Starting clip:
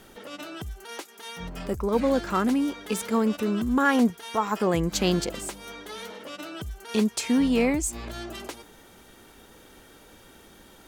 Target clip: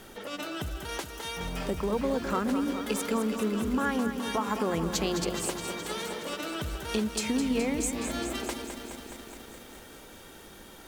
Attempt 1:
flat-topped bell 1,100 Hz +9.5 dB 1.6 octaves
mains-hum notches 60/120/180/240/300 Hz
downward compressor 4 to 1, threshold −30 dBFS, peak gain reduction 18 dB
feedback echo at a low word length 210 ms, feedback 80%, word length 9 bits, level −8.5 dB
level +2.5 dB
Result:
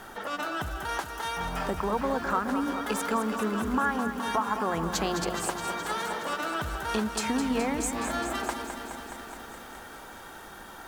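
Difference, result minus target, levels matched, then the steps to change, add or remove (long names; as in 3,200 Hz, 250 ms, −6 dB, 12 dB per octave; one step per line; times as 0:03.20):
1,000 Hz band +5.0 dB
remove: flat-topped bell 1,100 Hz +9.5 dB 1.6 octaves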